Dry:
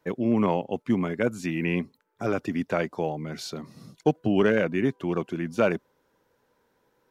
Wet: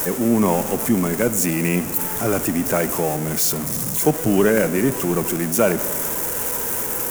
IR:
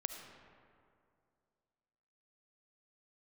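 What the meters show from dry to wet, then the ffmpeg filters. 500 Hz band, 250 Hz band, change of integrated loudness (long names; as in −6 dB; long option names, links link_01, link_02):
+6.0 dB, +6.0 dB, +7.5 dB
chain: -filter_complex "[0:a]aeval=exprs='val(0)+0.5*0.0376*sgn(val(0))':channel_layout=same,asplit=2[link_01][link_02];[1:a]atrim=start_sample=2205,asetrate=48510,aresample=44100,lowpass=3200[link_03];[link_02][link_03]afir=irnorm=-1:irlink=0,volume=-2.5dB[link_04];[link_01][link_04]amix=inputs=2:normalize=0,aexciter=amount=8.3:drive=4.2:freq=6000"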